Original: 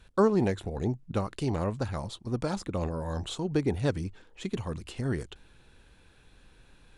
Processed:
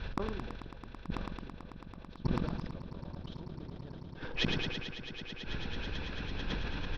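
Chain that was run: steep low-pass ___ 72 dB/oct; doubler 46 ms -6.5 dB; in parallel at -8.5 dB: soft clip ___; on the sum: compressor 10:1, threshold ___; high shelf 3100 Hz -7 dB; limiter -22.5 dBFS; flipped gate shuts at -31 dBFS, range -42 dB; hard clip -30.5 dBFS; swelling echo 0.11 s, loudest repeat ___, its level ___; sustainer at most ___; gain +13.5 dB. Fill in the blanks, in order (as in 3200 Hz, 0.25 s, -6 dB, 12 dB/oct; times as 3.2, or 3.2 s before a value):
5700 Hz, -27.5 dBFS, -28 dBFS, 8, -13.5 dB, 27 dB/s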